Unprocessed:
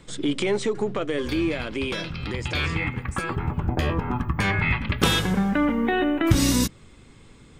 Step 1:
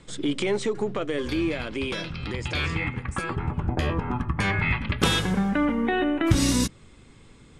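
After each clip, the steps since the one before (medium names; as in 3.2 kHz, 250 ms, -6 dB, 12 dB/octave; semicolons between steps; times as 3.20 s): steep low-pass 12 kHz 48 dB/octave; trim -1.5 dB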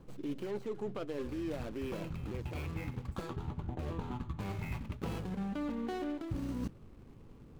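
median filter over 25 samples; reverse; compression 6:1, threshold -33 dBFS, peak gain reduction 18 dB; reverse; trim -2.5 dB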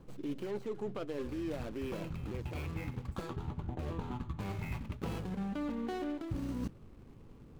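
no audible change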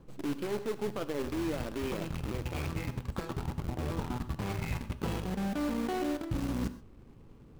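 in parallel at -5 dB: word length cut 6-bit, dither none; on the sum: gated-style reverb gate 150 ms flat, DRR 12 dB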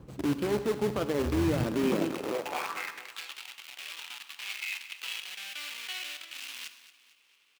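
high-pass sweep 67 Hz -> 2.7 kHz, 1.32–3.17 s; feedback delay 226 ms, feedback 44%, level -15 dB; trim +5 dB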